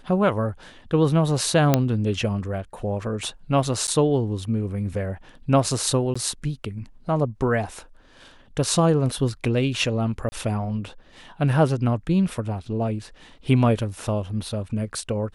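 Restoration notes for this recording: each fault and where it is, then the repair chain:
1.74 s: pop -3 dBFS
3.87–3.88 s: dropout 9.3 ms
6.14–6.16 s: dropout 15 ms
10.29–10.32 s: dropout 30 ms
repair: de-click; interpolate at 3.87 s, 9.3 ms; interpolate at 6.14 s, 15 ms; interpolate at 10.29 s, 30 ms

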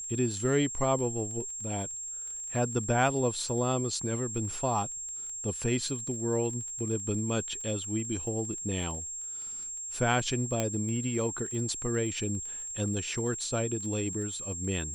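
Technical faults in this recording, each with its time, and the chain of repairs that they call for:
crackle 24 per s -39 dBFS
whine 7.5 kHz -36 dBFS
10.60 s: pop -14 dBFS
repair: de-click; band-stop 7.5 kHz, Q 30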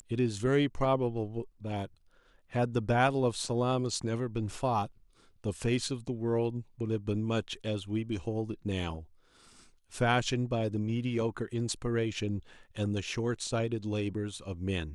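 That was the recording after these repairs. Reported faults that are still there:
nothing left

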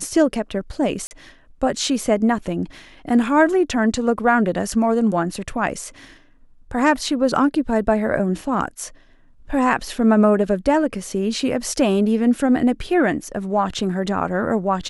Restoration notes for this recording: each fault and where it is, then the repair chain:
1.07–1.11 s: dropout 39 ms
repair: interpolate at 1.07 s, 39 ms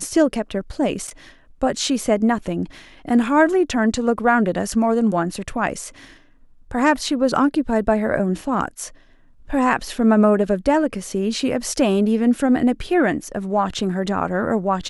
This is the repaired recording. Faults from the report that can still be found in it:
nothing left

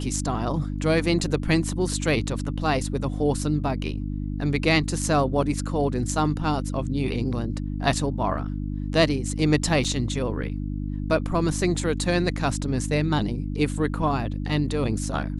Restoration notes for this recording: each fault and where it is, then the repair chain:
hum 50 Hz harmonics 6 -29 dBFS
9.84–9.85 s: dropout 5.4 ms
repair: de-hum 50 Hz, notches 6; interpolate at 9.84 s, 5.4 ms

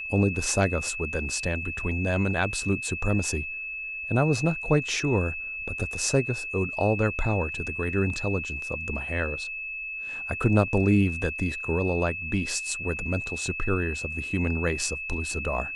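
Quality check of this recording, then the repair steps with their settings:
whine 2.6 kHz -32 dBFS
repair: band-stop 2.6 kHz, Q 30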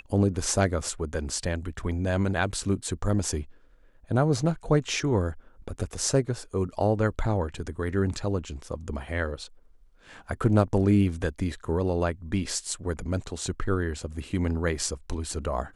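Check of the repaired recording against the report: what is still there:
nothing left

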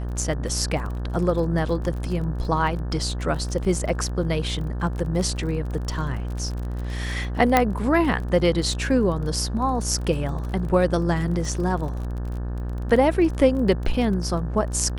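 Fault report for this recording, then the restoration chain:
buzz 60 Hz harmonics 30 -28 dBFS
crackle 31 per s -31 dBFS
7.57 s: pop -3 dBFS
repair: de-click; de-hum 60 Hz, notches 30

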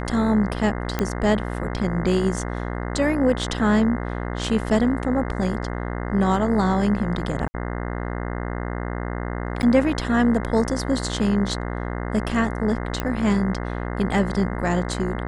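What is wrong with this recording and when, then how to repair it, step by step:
buzz 60 Hz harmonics 35 -28 dBFS
0.99 s: pop -9 dBFS
7.48–7.54 s: dropout 60 ms
9.62–9.63 s: dropout 9.8 ms
13.00 s: pop -10 dBFS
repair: de-click; de-hum 60 Hz, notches 35; interpolate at 7.48 s, 60 ms; interpolate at 9.62 s, 9.8 ms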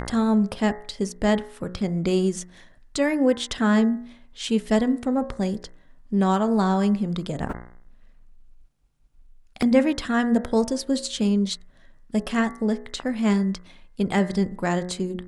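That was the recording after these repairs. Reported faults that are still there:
nothing left

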